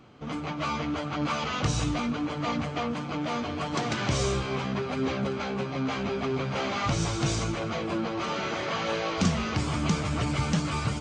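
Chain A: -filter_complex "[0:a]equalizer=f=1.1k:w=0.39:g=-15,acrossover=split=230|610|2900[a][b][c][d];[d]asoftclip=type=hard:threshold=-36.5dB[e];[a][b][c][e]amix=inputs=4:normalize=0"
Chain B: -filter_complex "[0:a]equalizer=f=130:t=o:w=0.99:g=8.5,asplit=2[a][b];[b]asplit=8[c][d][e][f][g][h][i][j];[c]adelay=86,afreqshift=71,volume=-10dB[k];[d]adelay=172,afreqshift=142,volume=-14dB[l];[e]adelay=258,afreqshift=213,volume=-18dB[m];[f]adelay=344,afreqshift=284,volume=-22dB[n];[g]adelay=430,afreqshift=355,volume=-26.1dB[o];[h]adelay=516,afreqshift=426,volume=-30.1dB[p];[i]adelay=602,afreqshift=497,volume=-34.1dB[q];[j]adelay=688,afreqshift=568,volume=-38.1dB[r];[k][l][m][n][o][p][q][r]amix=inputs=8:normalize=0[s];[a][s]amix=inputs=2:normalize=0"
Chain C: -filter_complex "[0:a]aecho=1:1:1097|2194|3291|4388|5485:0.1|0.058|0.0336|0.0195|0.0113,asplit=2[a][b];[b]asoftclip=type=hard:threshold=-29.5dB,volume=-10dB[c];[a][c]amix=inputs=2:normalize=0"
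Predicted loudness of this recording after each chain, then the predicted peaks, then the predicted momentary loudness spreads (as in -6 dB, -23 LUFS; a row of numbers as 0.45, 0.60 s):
-34.5, -25.5, -27.5 LUFS; -15.5, -9.0, -12.5 dBFS; 7, 6, 4 LU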